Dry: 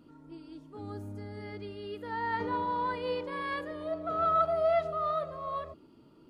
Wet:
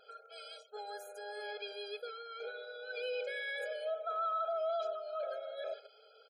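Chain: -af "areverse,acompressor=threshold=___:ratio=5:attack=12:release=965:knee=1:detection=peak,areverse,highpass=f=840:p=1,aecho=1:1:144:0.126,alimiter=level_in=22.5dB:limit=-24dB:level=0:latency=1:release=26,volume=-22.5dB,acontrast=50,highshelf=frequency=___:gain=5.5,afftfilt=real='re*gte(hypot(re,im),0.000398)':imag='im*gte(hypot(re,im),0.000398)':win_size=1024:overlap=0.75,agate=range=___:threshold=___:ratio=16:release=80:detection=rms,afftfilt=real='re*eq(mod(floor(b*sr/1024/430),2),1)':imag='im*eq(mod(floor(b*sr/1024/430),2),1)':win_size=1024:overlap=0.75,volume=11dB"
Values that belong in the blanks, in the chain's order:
-44dB, 2900, -6dB, -56dB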